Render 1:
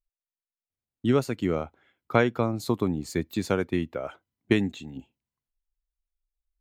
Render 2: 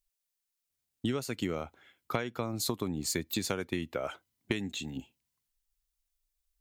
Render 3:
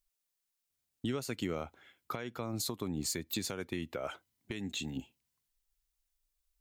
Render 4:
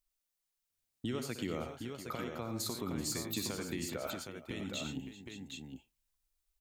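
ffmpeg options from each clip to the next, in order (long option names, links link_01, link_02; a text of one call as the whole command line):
ffmpeg -i in.wav -af "highshelf=frequency=2500:gain=11.5,acompressor=threshold=-28dB:ratio=12" out.wav
ffmpeg -i in.wav -af "alimiter=limit=-24dB:level=0:latency=1:release=200" out.wav
ffmpeg -i in.wav -af "aecho=1:1:63|93|113|384|562|765:0.251|0.355|0.282|0.133|0.237|0.501,volume=-2.5dB" out.wav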